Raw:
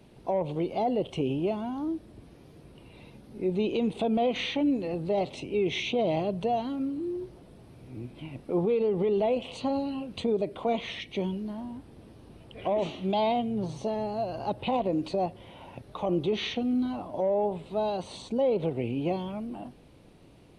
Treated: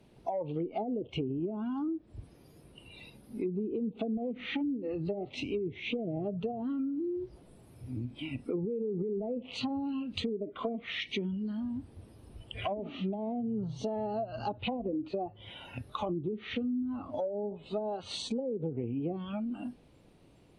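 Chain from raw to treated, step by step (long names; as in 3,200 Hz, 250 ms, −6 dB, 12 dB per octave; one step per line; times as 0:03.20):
noise reduction from a noise print of the clip's start 14 dB
treble cut that deepens with the level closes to 350 Hz, closed at −23.5 dBFS
downward compressor 4 to 1, threshold −42 dBFS, peak gain reduction 15 dB
level +8.5 dB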